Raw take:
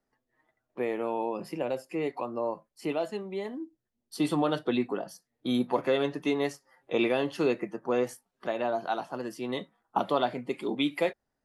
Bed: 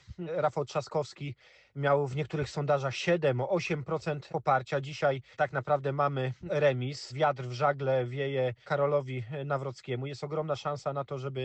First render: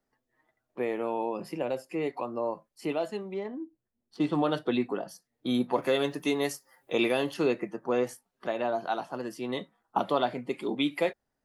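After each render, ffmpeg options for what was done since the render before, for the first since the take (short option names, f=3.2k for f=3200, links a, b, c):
-filter_complex "[0:a]asettb=1/sr,asplit=3[a][b][c];[a]atrim=end=3.344[d];[b]atrim=start=3.34:end=4.35,asetpts=PTS-STARTPTS,afade=t=in:d=0.004:c=qsin,afade=t=out:st=1.006:d=0.004:c=qsin,adynamicsmooth=sensitivity=3:basefreq=2.3k[e];[c]atrim=start=4.346[f];[d][e]acrossfade=d=0.004:c1=hsin:c2=qsin[g];[g][f]acrossfade=d=0.004:c1=qsin:c2=hsin,asettb=1/sr,asplit=3[h][i][j];[h]atrim=end=5.824[k];[i]atrim=start=5.82:end=7.34,asetpts=PTS-STARTPTS,afade=t=in:d=0.004:c=qsin,afade=t=out:st=1.516:d=0.004:c=qsin,aemphasis=mode=production:type=50fm[l];[j]atrim=start=7.336[m];[k][l]acrossfade=d=0.004:c1=hsin:c2=qsin[n];[n][m]acrossfade=d=0.004:c1=qsin:c2=hsin"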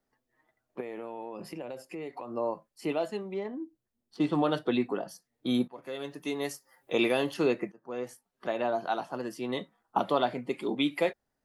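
-filter_complex "[0:a]asettb=1/sr,asplit=3[a][b][c];[a]atrim=end=0.804[d];[b]atrim=start=0.8:end=2.31,asetpts=PTS-STARTPTS,afade=t=in:d=0.004:c=qsin,afade=t=out:st=1.506:d=0.004:c=qsin,acompressor=threshold=-35dB:ratio=6:attack=3.2:release=140:knee=1:detection=peak[e];[c]atrim=start=2.306[f];[d][e]acrossfade=d=0.004:c1=hsin:c2=qsin[g];[g][f]acrossfade=d=0.004:c1=qsin:c2=hsin,asplit=3[h][i][j];[h]atrim=end=5.68,asetpts=PTS-STARTPTS,afade=t=out:st=5.676:d=0.004:c=hsin:silence=0.0630957[k];[i]atrim=start=5.68:end=7.72,asetpts=PTS-STARTPTS,afade=t=in:d=1.27:silence=0.0630957,afade=t=out:st=2.036:d=0.004:c=hsin:silence=0.0707946[l];[j]atrim=start=7.72,asetpts=PTS-STARTPTS,afade=t=in:d=0.82:silence=0.0707946[m];[k][l][m]concat=n=3:v=0:a=1"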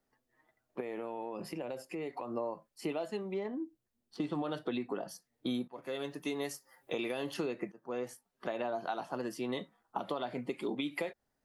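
-af "alimiter=limit=-20dB:level=0:latency=1:release=165,acompressor=threshold=-32dB:ratio=6"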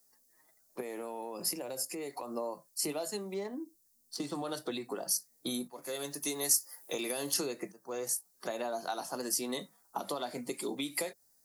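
-filter_complex "[0:a]acrossover=split=310[a][b];[a]flanger=delay=20:depth=2.2:speed=0.31[c];[b]aexciter=amount=4.9:drive=9.1:freq=4.5k[d];[c][d]amix=inputs=2:normalize=0"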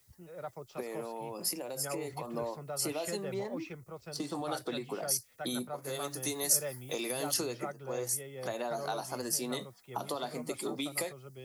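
-filter_complex "[1:a]volume=-14dB[a];[0:a][a]amix=inputs=2:normalize=0"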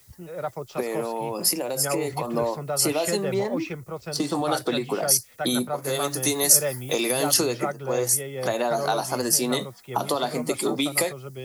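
-af "volume=11.5dB,alimiter=limit=-2dB:level=0:latency=1"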